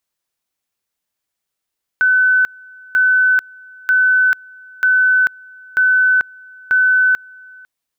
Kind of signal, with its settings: two-level tone 1.51 kHz -9.5 dBFS, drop 27 dB, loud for 0.44 s, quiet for 0.50 s, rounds 6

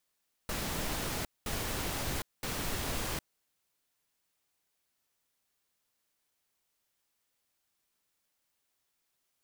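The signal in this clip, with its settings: noise bursts pink, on 0.76 s, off 0.21 s, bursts 3, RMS -35 dBFS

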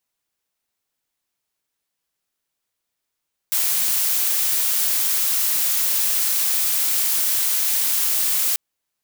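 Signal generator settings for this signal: noise blue, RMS -20 dBFS 5.04 s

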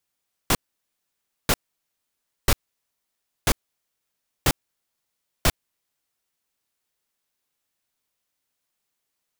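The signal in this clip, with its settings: noise bursts pink, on 0.05 s, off 0.94 s, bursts 6, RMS -17.5 dBFS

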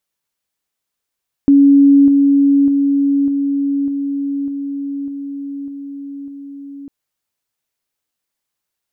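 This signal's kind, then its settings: level ladder 280 Hz -5 dBFS, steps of -3 dB, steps 9, 0.60 s 0.00 s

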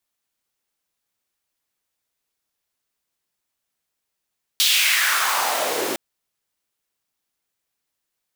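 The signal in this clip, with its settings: swept filtered noise pink, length 1.36 s highpass, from 3.7 kHz, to 330 Hz, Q 2.8, exponential, gain ramp -10 dB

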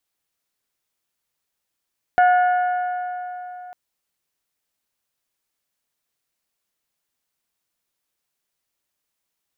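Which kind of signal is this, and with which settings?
metal hit bell, length 1.55 s, lowest mode 724 Hz, decay 3.73 s, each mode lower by 8.5 dB, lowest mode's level -11 dB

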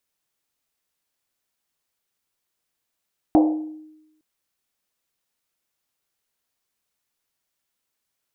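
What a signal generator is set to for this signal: Risset drum length 0.86 s, pitch 310 Hz, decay 0.97 s, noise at 650 Hz, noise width 450 Hz, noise 20%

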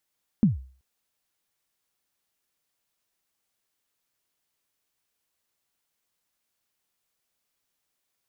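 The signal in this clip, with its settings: kick drum length 0.38 s, from 240 Hz, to 65 Hz, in 145 ms, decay 0.42 s, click off, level -12 dB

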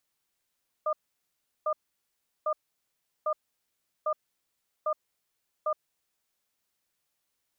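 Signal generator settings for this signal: cadence 617 Hz, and 1.21 kHz, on 0.07 s, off 0.73 s, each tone -27.5 dBFS 5.05 s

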